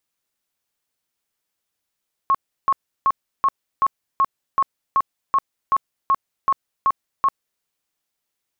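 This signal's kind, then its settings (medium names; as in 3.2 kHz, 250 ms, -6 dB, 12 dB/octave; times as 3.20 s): tone bursts 1.09 kHz, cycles 50, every 0.38 s, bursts 14, -13 dBFS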